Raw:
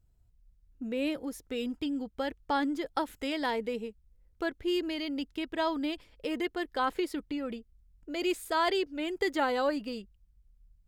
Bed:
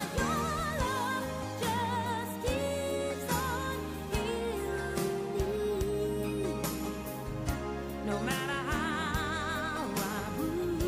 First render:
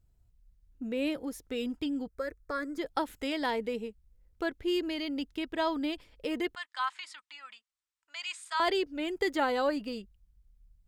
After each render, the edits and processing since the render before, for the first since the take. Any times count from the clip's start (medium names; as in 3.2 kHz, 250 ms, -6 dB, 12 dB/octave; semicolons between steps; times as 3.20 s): 2.07–2.78 s: static phaser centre 830 Hz, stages 6; 6.55–8.60 s: elliptic band-pass 1–8.6 kHz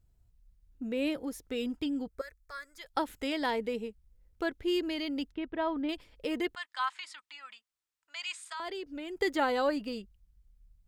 2.21–2.94 s: amplifier tone stack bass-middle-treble 10-0-10; 5.32–5.89 s: distance through air 460 m; 8.37–9.21 s: compression 4:1, threshold -37 dBFS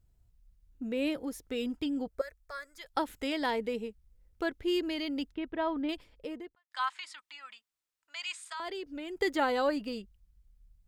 1.97–2.67 s: peaking EQ 640 Hz +7.5 dB; 5.90–6.71 s: studio fade out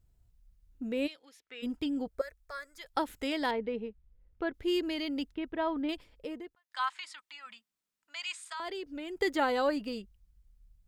1.06–1.62 s: band-pass filter 4.9 kHz -> 1.7 kHz, Q 1.6; 3.51–4.54 s: distance through air 310 m; 7.46–8.20 s: peaking EQ 210 Hz +14 dB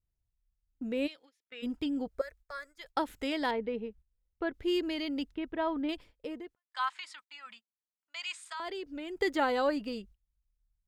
gate -53 dBFS, range -17 dB; treble shelf 7.6 kHz -4.5 dB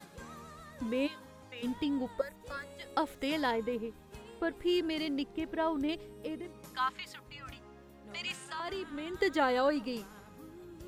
add bed -17.5 dB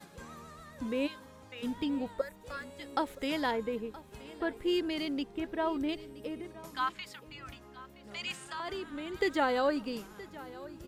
delay 972 ms -18 dB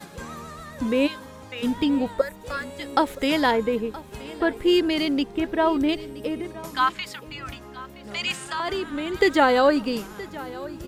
trim +11 dB